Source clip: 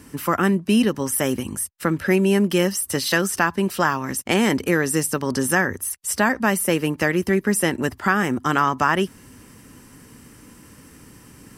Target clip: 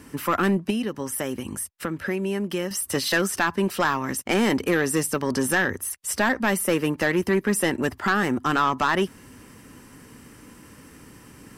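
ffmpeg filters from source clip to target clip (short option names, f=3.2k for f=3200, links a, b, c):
-filter_complex "[0:a]bass=f=250:g=-3,treble=f=4k:g=-4,asettb=1/sr,asplit=3[a][b][c];[a]atrim=end=0.704[d];[b]atrim=start=0.7:end=2.71,asetpts=PTS-STARTPTS,afade=t=in:d=0.004:c=qsin,afade=t=out:st=2.006:d=0.004:c=qsin,acompressor=threshold=-28dB:ratio=2.5[e];[c]atrim=start=2.706[f];[d][e]acrossfade=d=0.004:c1=hsin:c2=qsin[g];[g][f]acrossfade=d=0.004:c1=qsin:c2=hsin,asoftclip=type=tanh:threshold=-14dB,volume=1dB"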